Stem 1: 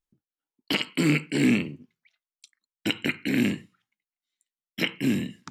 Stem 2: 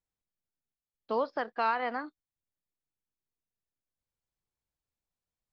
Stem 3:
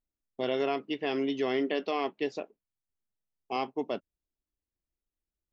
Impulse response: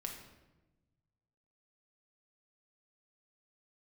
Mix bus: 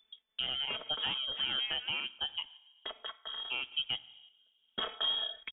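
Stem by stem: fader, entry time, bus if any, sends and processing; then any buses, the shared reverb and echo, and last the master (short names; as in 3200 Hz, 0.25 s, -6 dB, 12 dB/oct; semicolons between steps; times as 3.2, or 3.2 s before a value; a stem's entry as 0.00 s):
0.0 dB, 0.00 s, no send, comb 4.6 ms, depth 80%; compressor 2.5:1, threshold -30 dBFS, peak gain reduction 11 dB; auto duck -17 dB, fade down 1.45 s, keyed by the third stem
-14.5 dB, 0.00 s, no send, dry
-3.5 dB, 0.00 s, send -11 dB, reverb removal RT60 0.53 s; bit-crush 10-bit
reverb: on, RT60 1.1 s, pre-delay 5 ms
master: random-step tremolo; inverted band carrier 3500 Hz; three-band squash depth 70%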